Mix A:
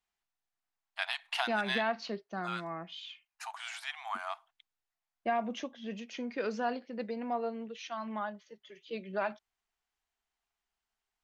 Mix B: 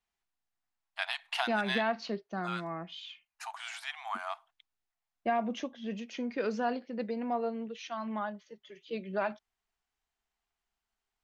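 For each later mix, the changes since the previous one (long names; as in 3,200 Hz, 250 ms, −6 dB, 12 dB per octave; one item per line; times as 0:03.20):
master: add low-shelf EQ 460 Hz +4 dB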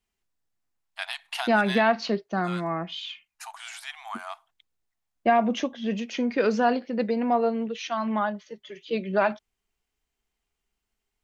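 first voice: add high-shelf EQ 7,200 Hz +12 dB
second voice +9.5 dB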